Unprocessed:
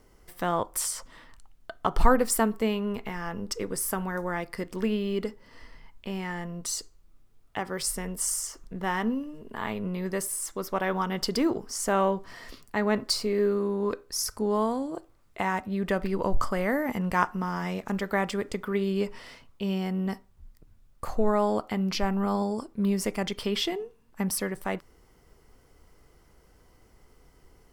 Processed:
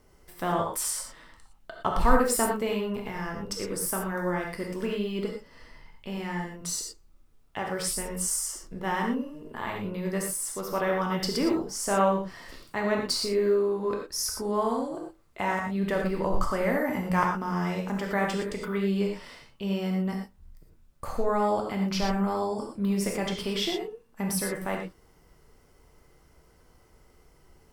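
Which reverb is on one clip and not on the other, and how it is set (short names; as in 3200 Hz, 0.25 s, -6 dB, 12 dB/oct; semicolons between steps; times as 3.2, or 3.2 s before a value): non-linear reverb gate 0.14 s flat, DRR 0 dB; gain -2.5 dB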